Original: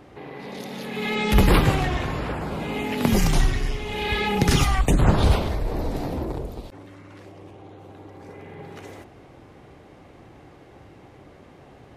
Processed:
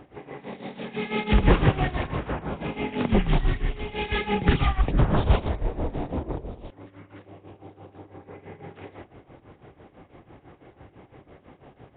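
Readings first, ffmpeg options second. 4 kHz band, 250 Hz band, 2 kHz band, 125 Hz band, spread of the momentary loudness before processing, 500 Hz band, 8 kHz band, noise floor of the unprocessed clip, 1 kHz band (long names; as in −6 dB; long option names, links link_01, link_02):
−6.0 dB, −2.5 dB, −3.5 dB, −2.5 dB, 21 LU, −2.0 dB, below −40 dB, −49 dBFS, −3.0 dB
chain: -af "tremolo=f=6:d=0.82,volume=1.5dB" -ar 8000 -c:a nellymoser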